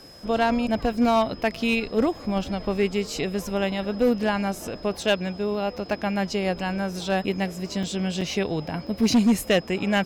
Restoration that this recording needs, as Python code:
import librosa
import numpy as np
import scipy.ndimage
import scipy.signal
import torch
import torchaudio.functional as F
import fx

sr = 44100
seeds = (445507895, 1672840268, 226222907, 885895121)

y = fx.fix_declip(x, sr, threshold_db=-13.5)
y = fx.notch(y, sr, hz=5100.0, q=30.0)
y = fx.fix_interpolate(y, sr, at_s=(7.83, 8.21, 8.87), length_ms=4.2)